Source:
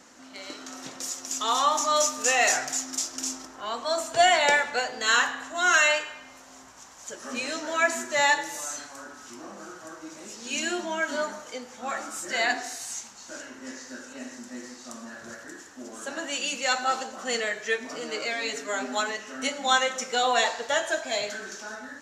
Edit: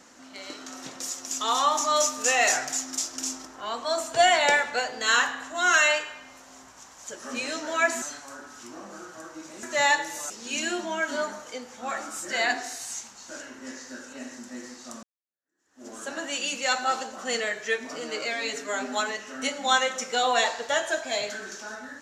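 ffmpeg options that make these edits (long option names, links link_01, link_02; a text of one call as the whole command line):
ffmpeg -i in.wav -filter_complex "[0:a]asplit=5[link_01][link_02][link_03][link_04][link_05];[link_01]atrim=end=8.022[link_06];[link_02]atrim=start=8.688:end=10.302[link_07];[link_03]atrim=start=8.018:end=8.692[link_08];[link_04]atrim=start=10.298:end=15.03,asetpts=PTS-STARTPTS,afade=type=out:start_time=4.728:duration=0.004:curve=hsin[link_09];[link_05]atrim=start=15.03,asetpts=PTS-STARTPTS,afade=type=in:duration=0.84:curve=exp[link_10];[link_06][link_07]acrossfade=duration=0.004:curve1=hsin:curve2=hsin[link_11];[link_11][link_08]acrossfade=duration=0.004:curve1=hsin:curve2=hsin[link_12];[link_09][link_10]concat=n=2:v=0:a=1[link_13];[link_12][link_13]acrossfade=duration=0.004:curve1=hsin:curve2=hsin" out.wav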